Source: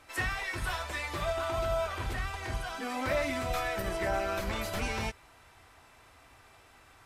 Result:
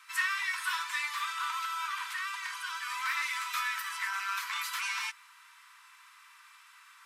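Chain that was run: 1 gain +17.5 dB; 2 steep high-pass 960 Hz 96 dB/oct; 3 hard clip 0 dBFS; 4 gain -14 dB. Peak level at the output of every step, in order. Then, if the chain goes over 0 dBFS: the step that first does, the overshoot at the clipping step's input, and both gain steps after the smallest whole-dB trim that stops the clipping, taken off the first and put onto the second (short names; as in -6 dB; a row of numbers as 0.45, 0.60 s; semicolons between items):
-2.0, -3.5, -3.5, -17.5 dBFS; no overload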